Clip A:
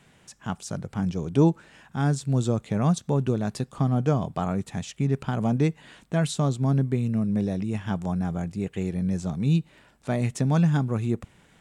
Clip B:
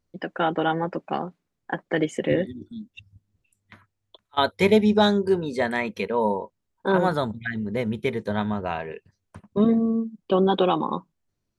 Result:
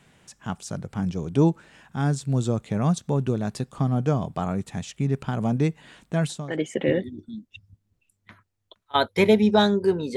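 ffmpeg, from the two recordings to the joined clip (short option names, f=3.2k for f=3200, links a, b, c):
-filter_complex "[0:a]apad=whole_dur=10.16,atrim=end=10.16,atrim=end=6.66,asetpts=PTS-STARTPTS[a];[1:a]atrim=start=1.67:end=5.59,asetpts=PTS-STARTPTS[b];[a][b]acrossfade=d=0.42:c1=qua:c2=qua"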